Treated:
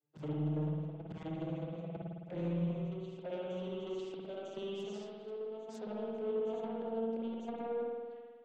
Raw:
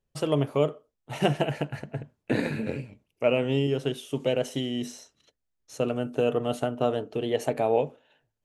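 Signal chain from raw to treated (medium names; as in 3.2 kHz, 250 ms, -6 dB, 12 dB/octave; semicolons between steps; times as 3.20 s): vocoder on a note that slides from D3, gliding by +9 st; Bessel high-pass 160 Hz, order 8; slow attack 192 ms; compression 12:1, threshold -41 dBFS, peak gain reduction 20.5 dB; touch-sensitive flanger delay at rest 9.4 ms, full sweep at -44.5 dBFS; saturation -39.5 dBFS, distortion -17 dB; on a send: reverse echo 949 ms -6.5 dB; on the sum: spring tank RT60 1.6 s, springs 53 ms, chirp 30 ms, DRR -2 dB; trim +4.5 dB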